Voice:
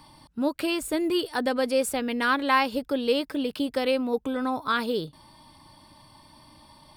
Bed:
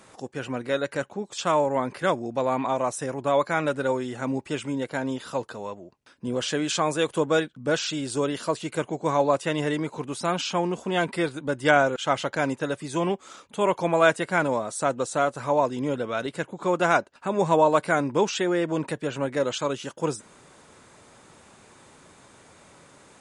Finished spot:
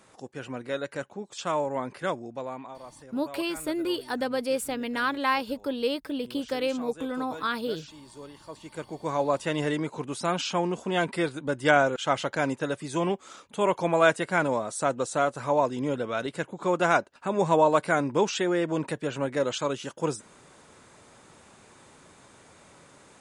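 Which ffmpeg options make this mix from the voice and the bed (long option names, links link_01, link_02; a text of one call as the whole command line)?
ffmpeg -i stem1.wav -i stem2.wav -filter_complex "[0:a]adelay=2750,volume=-3.5dB[link_01];[1:a]volume=12dB,afade=type=out:start_time=2.06:duration=0.7:silence=0.211349,afade=type=in:start_time=8.45:duration=1.15:silence=0.133352[link_02];[link_01][link_02]amix=inputs=2:normalize=0" out.wav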